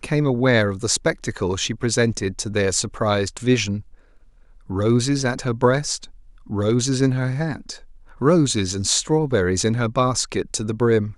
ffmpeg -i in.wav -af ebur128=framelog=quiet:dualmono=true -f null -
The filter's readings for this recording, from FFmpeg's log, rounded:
Integrated loudness:
  I:         -17.8 LUFS
  Threshold: -28.3 LUFS
Loudness range:
  LRA:         2.2 LU
  Threshold: -38.7 LUFS
  LRA low:   -19.7 LUFS
  LRA high:  -17.5 LUFS